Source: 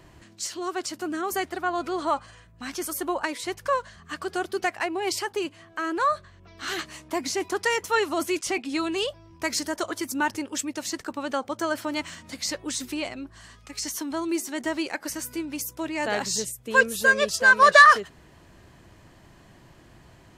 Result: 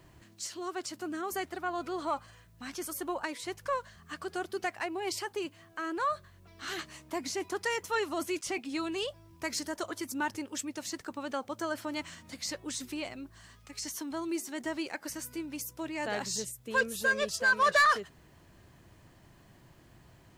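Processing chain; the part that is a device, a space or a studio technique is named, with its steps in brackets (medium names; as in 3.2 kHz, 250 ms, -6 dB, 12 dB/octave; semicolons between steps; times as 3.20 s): open-reel tape (saturation -11.5 dBFS, distortion -13 dB; peaking EQ 120 Hz +3 dB 1.16 oct; white noise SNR 40 dB); trim -7 dB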